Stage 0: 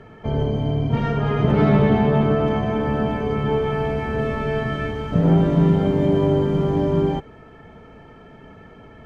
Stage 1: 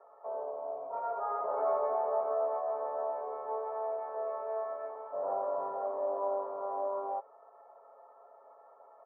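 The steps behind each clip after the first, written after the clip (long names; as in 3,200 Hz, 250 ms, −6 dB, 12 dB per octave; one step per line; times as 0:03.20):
Chebyshev band-pass filter 540–1,200 Hz, order 3
comb filter 7.3 ms, depth 57%
level −5 dB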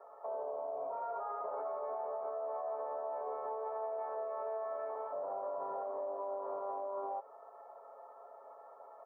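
downward compressor, threshold −36 dBFS, peak gain reduction 9.5 dB
brickwall limiter −35 dBFS, peak gain reduction 6.5 dB
level +3 dB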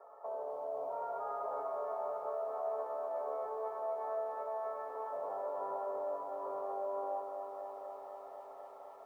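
feedback echo at a low word length 249 ms, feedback 80%, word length 12 bits, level −7.5 dB
level −1 dB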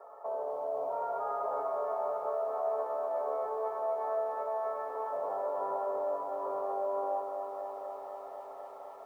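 level that may rise only so fast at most 420 dB per second
level +5 dB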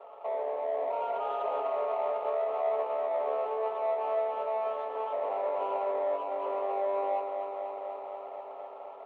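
running median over 25 samples
band-pass filter 270–2,000 Hz
level +4 dB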